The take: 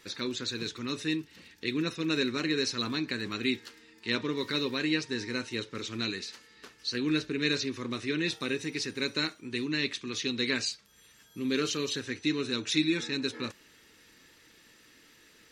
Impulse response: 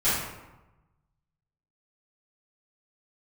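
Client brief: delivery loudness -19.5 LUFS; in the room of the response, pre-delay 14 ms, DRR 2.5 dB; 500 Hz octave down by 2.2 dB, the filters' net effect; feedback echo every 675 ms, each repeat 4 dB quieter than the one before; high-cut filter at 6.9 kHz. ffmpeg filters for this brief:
-filter_complex "[0:a]lowpass=6900,equalizer=f=500:t=o:g=-3,aecho=1:1:675|1350|2025|2700|3375|4050|4725|5400|6075:0.631|0.398|0.25|0.158|0.0994|0.0626|0.0394|0.0249|0.0157,asplit=2[s0][s1];[1:a]atrim=start_sample=2205,adelay=14[s2];[s1][s2]afir=irnorm=-1:irlink=0,volume=0.15[s3];[s0][s3]amix=inputs=2:normalize=0,volume=2.99"

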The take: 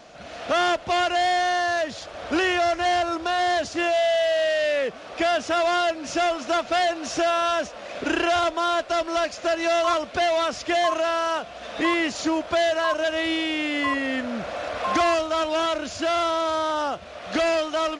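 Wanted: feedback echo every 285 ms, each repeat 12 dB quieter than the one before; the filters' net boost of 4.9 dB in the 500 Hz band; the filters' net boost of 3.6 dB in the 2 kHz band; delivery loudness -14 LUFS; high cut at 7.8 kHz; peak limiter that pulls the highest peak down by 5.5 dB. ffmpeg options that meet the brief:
-af "lowpass=7800,equalizer=f=500:t=o:g=7.5,equalizer=f=2000:t=o:g=4,alimiter=limit=0.224:level=0:latency=1,aecho=1:1:285|570|855:0.251|0.0628|0.0157,volume=2.37"

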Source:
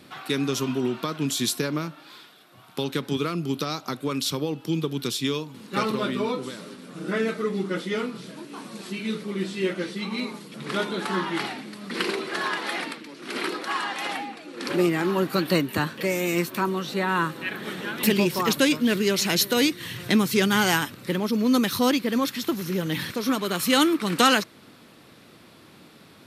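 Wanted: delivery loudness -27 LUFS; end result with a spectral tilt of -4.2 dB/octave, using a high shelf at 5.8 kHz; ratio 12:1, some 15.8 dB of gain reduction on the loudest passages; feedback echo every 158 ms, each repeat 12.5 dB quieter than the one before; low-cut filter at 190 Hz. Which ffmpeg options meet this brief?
-af "highpass=190,highshelf=f=5800:g=-8.5,acompressor=threshold=0.0251:ratio=12,aecho=1:1:158|316|474:0.237|0.0569|0.0137,volume=2.99"

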